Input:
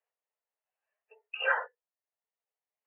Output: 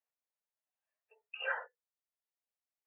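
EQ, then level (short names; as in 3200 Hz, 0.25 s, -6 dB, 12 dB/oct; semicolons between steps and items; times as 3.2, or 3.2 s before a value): HPF 390 Hz; dynamic EQ 1100 Hz, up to -4 dB, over -43 dBFS, Q 2.3; -7.0 dB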